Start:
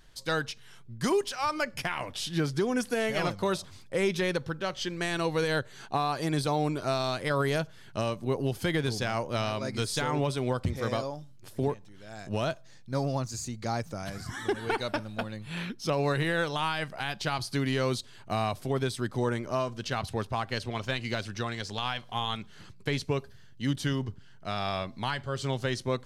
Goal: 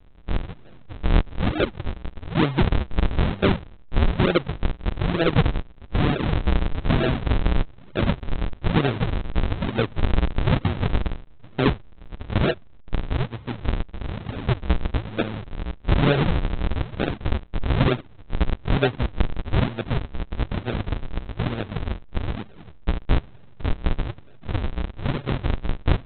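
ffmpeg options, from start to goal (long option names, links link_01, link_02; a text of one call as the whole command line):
ffmpeg -i in.wav -af "adynamicequalizer=threshold=0.01:dfrequency=520:dqfactor=0.75:tfrequency=520:tqfactor=0.75:attack=5:release=100:ratio=0.375:range=2:mode=boostabove:tftype=bell,aresample=8000,acrusher=samples=37:mix=1:aa=0.000001:lfo=1:lforange=59.2:lforate=1.1,aresample=44100,volume=6.5dB" out.wav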